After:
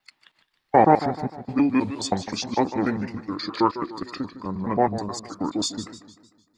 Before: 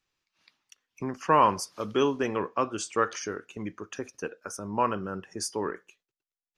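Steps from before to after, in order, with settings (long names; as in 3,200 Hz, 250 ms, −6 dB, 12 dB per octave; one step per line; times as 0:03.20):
slices reordered back to front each 106 ms, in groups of 7
formants moved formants −5 semitones
feedback echo with a swinging delay time 152 ms, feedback 47%, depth 148 cents, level −12.5 dB
level +5.5 dB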